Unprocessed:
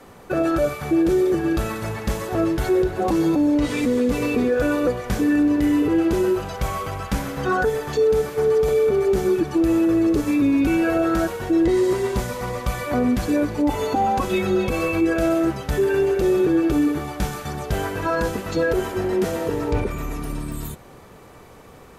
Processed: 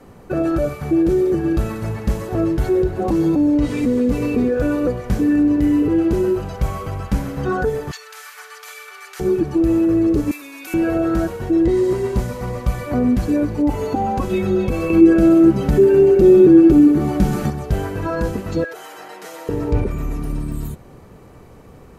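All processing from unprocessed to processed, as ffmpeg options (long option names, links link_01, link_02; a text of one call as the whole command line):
ffmpeg -i in.wav -filter_complex "[0:a]asettb=1/sr,asplit=3[link_01][link_02][link_03];[link_01]atrim=end=7.914[link_04];[link_02]atrim=start=7.91:end=9.2,asetpts=PTS-STARTPTS,afade=type=in:duration=0.004:curve=qsin,afade=type=out:start_time=1.286:duration=0.004:curve=qsin,highpass=frequency=1300:width=0.5412,highpass=frequency=1300:width=1.3066,acontrast=33[link_05];[link_03]atrim=start=9.196[link_06];[link_04][link_05]acrossfade=duration=0.004:curve1=hsin:curve2=qsin[link_07];[link_07][link_06]acrossfade=duration=0.004:curve1=qsin:curve2=hsin,asettb=1/sr,asplit=3[link_08][link_09][link_10];[link_08]atrim=end=10.314[link_11];[link_09]atrim=start=10.31:end=10.74,asetpts=PTS-STARTPTS,afade=type=in:duration=0.004:curve=qsin,afade=type=out:start_time=0.426:duration=0.004:curve=qsin,highpass=1200,aemphasis=mode=production:type=50kf[link_12];[link_10]atrim=start=10.736[link_13];[link_11][link_12]acrossfade=duration=0.004:curve1=hsin:curve2=qsin[link_14];[link_14][link_13]acrossfade=duration=0.004:curve1=qsin:curve2=hsin,asettb=1/sr,asplit=3[link_15][link_16][link_17];[link_15]atrim=end=14.904[link_18];[link_16]atrim=start=14.9:end=17.5,asetpts=PTS-STARTPTS,afade=type=in:duration=0.004:curve=qsin,afade=type=out:start_time=2.596:duration=0.004:curve=qsin,equalizer=frequency=270:width_type=o:width=1:gain=9.5,aecho=1:1:5.4:0.36,atrim=end_sample=114660,acompressor=mode=upward:threshold=-14dB:ratio=2.5:attack=3.2:release=140:knee=2.83:detection=peak[link_19];[link_17]atrim=start=17.496[link_20];[link_18][link_19]acrossfade=duration=0.004:curve1=hsin:curve2=qsin[link_21];[link_21][link_20]acrossfade=duration=0.004:curve1=qsin:curve2=hsin,asettb=1/sr,asplit=3[link_22][link_23][link_24];[link_22]atrim=end=18.644[link_25];[link_23]atrim=start=18.64:end=19.49,asetpts=PTS-STARTPTS,afade=type=in:duration=0.004:curve=qsin,afade=type=out:start_time=0.846:duration=0.004:curve=qsin,highpass=910,acompressor=threshold=-31dB:ratio=2.5:attack=3.2:release=140:knee=1:detection=peak,aecho=1:1:6.6:0.97,atrim=end_sample=37485[link_26];[link_24]atrim=start=19.486[link_27];[link_25][link_26]acrossfade=duration=0.004:curve1=hsin:curve2=qsin[link_28];[link_28][link_27]acrossfade=duration=0.004:curve1=qsin:curve2=hsin,lowshelf=frequency=450:gain=10.5,bandreject=frequency=3500:width=20,volume=-4.5dB" out.wav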